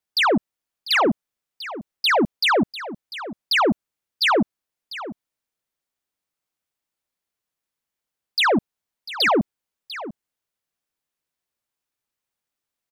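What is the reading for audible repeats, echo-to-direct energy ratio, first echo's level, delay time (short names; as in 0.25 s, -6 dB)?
1, -14.5 dB, -14.5 dB, 0.696 s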